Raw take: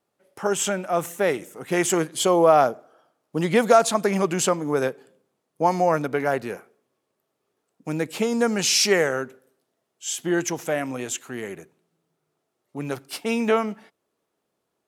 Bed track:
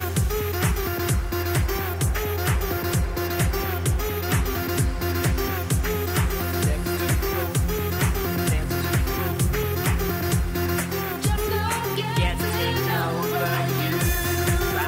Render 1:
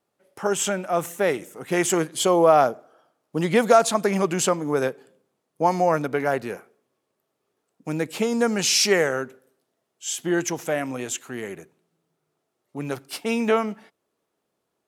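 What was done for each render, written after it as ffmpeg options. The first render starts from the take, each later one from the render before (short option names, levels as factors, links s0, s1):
-af anull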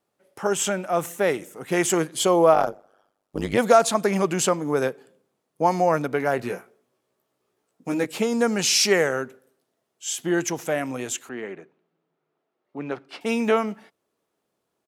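-filter_complex "[0:a]asplit=3[s0][s1][s2];[s0]afade=t=out:st=2.53:d=0.02[s3];[s1]tremolo=f=100:d=1,afade=t=in:st=2.53:d=0.02,afade=t=out:st=3.57:d=0.02[s4];[s2]afade=t=in:st=3.57:d=0.02[s5];[s3][s4][s5]amix=inputs=3:normalize=0,asplit=3[s6][s7][s8];[s6]afade=t=out:st=6.38:d=0.02[s9];[s7]asplit=2[s10][s11];[s11]adelay=16,volume=0.708[s12];[s10][s12]amix=inputs=2:normalize=0,afade=t=in:st=6.38:d=0.02,afade=t=out:st=8.05:d=0.02[s13];[s8]afade=t=in:st=8.05:d=0.02[s14];[s9][s13][s14]amix=inputs=3:normalize=0,asettb=1/sr,asplit=3[s15][s16][s17];[s15]atrim=end=11.294[s18];[s16]atrim=start=11.29:end=13.21,asetpts=PTS-STARTPTS,afade=t=in:d=0.004:c=qsin,afade=t=out:st=1.916:d=0.004:c=qsin,highpass=200,lowpass=2800[s19];[s17]atrim=start=13.206[s20];[s18][s19]acrossfade=d=0.004:c1=hsin:c2=qsin[s21];[s21][s20]acrossfade=d=0.004:c1=qsin:c2=hsin"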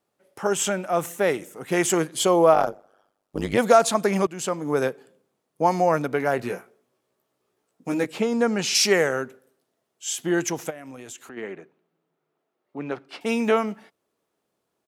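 -filter_complex "[0:a]asettb=1/sr,asplit=3[s0][s1][s2];[s0]atrim=end=8.104[s3];[s1]atrim=start=8.1:end=8.75,asetpts=PTS-STARTPTS,afade=t=in:d=0.004:c=qsin,afade=t=out:st=0.646:d=0.004:c=qsin,highshelf=f=6000:g=-12[s4];[s2]atrim=start=8.746[s5];[s3][s4]acrossfade=d=0.004:c1=hsin:c2=qsin[s6];[s6][s5]acrossfade=d=0.004:c1=qsin:c2=hsin,asplit=3[s7][s8][s9];[s7]afade=t=out:st=10.69:d=0.02[s10];[s8]acompressor=threshold=0.0141:ratio=5:attack=3.2:release=140:knee=1:detection=peak,afade=t=in:st=10.69:d=0.02,afade=t=out:st=11.36:d=0.02[s11];[s9]afade=t=in:st=11.36:d=0.02[s12];[s10][s11][s12]amix=inputs=3:normalize=0,asplit=2[s13][s14];[s13]atrim=end=4.27,asetpts=PTS-STARTPTS,afade=t=out:st=4.266:d=0.004:c=hsin:silence=0.133352[s15];[s14]atrim=start=4.27,asetpts=PTS-STARTPTS,afade=t=in:d=0.47:silence=0.133352[s16];[s15][s16]concat=n=2:v=0:a=1"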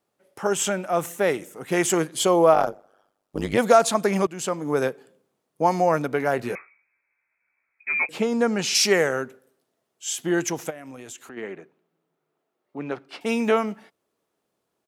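-filter_complex "[0:a]asettb=1/sr,asplit=3[s0][s1][s2];[s0]atrim=end=6.554[s3];[s1]atrim=start=6.55:end=8.09,asetpts=PTS-STARTPTS,afade=t=in:d=0.004:c=qsin,afade=t=out:st=1.536:d=0.004:c=qsin,lowpass=f=2300:t=q:w=0.5098,lowpass=f=2300:t=q:w=0.6013,lowpass=f=2300:t=q:w=0.9,lowpass=f=2300:t=q:w=2.563,afreqshift=-2700[s4];[s2]atrim=start=8.086[s5];[s3][s4]acrossfade=d=0.004:c1=hsin:c2=qsin[s6];[s6][s5]acrossfade=d=0.004:c1=qsin:c2=hsin"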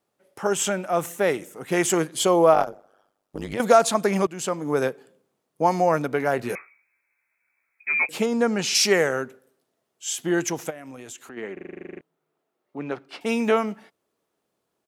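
-filter_complex "[0:a]asettb=1/sr,asplit=3[s0][s1][s2];[s0]atrim=end=2.634[s3];[s1]atrim=start=2.63:end=3.6,asetpts=PTS-STARTPTS,afade=t=in:d=0.004:c=qsin,afade=t=out:st=0.966:d=0.004:c=qsin,acompressor=threshold=0.0355:ratio=2.5:attack=3.2:release=140:knee=1:detection=peak[s4];[s2]atrim=start=3.596[s5];[s3][s4]acrossfade=d=0.004:c1=hsin:c2=qsin[s6];[s6][s5]acrossfade=d=0.004:c1=qsin:c2=hsin,asettb=1/sr,asplit=3[s7][s8][s9];[s7]atrim=end=6.494[s10];[s8]atrim=start=6.49:end=8.26,asetpts=PTS-STARTPTS,afade=t=in:d=0.004:c=qsin,afade=t=out:st=1.766:d=0.004:c=qsin,highshelf=f=5900:g=11[s11];[s9]atrim=start=8.256[s12];[s10][s11]acrossfade=d=0.004:c1=hsin:c2=qsin[s13];[s13][s12]acrossfade=d=0.004:c1=qsin:c2=hsin,asplit=13[s14][s15][s16][s17][s18][s19][s20][s21][s22][s23][s24][s25][s26];[s14]atrim=end=11.572[s27];[s15]atrim=start=11.528:end=11.572[s28];[s16]atrim=start=11.528:end=11.572[s29];[s17]atrim=start=11.528:end=11.572[s30];[s18]atrim=start=11.528:end=11.572[s31];[s19]atrim=start=11.528:end=11.572[s32];[s20]atrim=start=11.528:end=11.572[s33];[s21]atrim=start=11.528:end=11.572[s34];[s22]atrim=start=11.528:end=11.572[s35];[s23]atrim=start=11.528:end=11.572[s36];[s24]atrim=start=11.528:end=11.572[s37];[s25]atrim=start=11.528:end=11.572[s38];[s26]atrim=start=12.008[s39];[s27][s28]acrossfade=d=0.004:c1=hsin:c2=hsin[s40];[s40][s29]acrossfade=d=0.004:c1=hsin:c2=hsin[s41];[s41][s30]acrossfade=d=0.004:c1=hsin:c2=hsin[s42];[s42][s31]acrossfade=d=0.004:c1=hsin:c2=hsin[s43];[s43][s32]acrossfade=d=0.004:c1=hsin:c2=hsin[s44];[s44][s33]acrossfade=d=0.004:c1=hsin:c2=hsin[s45];[s45][s34]acrossfade=d=0.004:c1=hsin:c2=hsin[s46];[s46][s35]acrossfade=d=0.004:c1=hsin:c2=hsin[s47];[s47][s36]acrossfade=d=0.004:c1=hsin:c2=hsin[s48];[s48][s37]acrossfade=d=0.004:c1=hsin:c2=hsin[s49];[s49][s38]acrossfade=d=0.004:c1=hsin:c2=hsin[s50];[s50][s39]acrossfade=d=0.004:c1=hsin:c2=hsin"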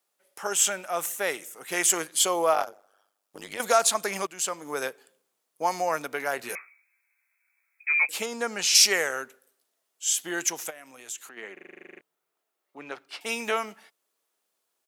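-af "highpass=f=1300:p=1,highshelf=f=5600:g=7"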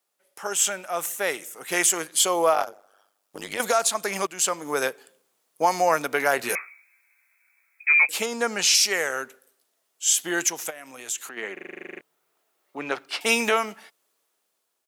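-af "dynaudnorm=f=460:g=7:m=3.76,alimiter=limit=0.376:level=0:latency=1:release=494"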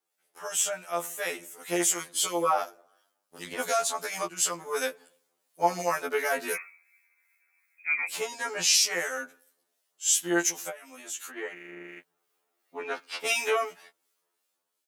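-filter_complex "[0:a]acrossover=split=1700[s0][s1];[s0]aeval=exprs='val(0)*(1-0.5/2+0.5/2*cos(2*PI*2.8*n/s))':c=same[s2];[s1]aeval=exprs='val(0)*(1-0.5/2-0.5/2*cos(2*PI*2.8*n/s))':c=same[s3];[s2][s3]amix=inputs=2:normalize=0,afftfilt=real='re*2*eq(mod(b,4),0)':imag='im*2*eq(mod(b,4),0)':win_size=2048:overlap=0.75"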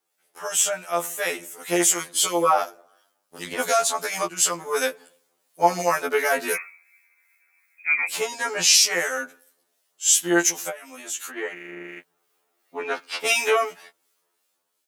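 -af "volume=2"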